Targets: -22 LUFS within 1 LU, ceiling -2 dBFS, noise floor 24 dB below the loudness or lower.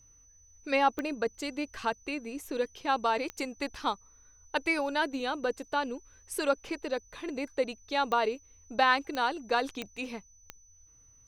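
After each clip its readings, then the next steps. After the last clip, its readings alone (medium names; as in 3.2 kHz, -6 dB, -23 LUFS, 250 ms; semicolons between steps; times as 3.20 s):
clicks found 6; steady tone 6 kHz; tone level -58 dBFS; loudness -31.5 LUFS; peak level -12.0 dBFS; loudness target -22.0 LUFS
-> de-click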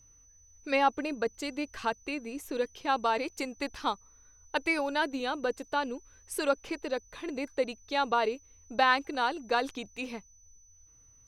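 clicks found 0; steady tone 6 kHz; tone level -58 dBFS
-> band-stop 6 kHz, Q 30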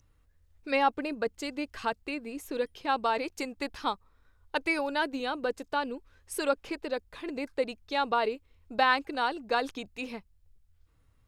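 steady tone not found; loudness -31.5 LUFS; peak level -12.0 dBFS; loudness target -22.0 LUFS
-> trim +9.5 dB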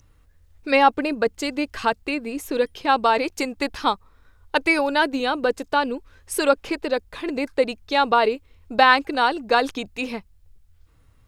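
loudness -22.0 LUFS; peak level -2.5 dBFS; noise floor -57 dBFS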